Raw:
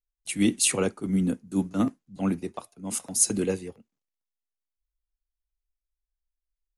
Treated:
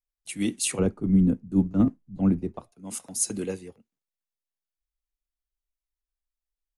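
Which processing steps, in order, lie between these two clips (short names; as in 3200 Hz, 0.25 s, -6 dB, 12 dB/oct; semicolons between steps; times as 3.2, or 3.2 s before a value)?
0.79–2.72 tilt -4 dB/oct; gain -4.5 dB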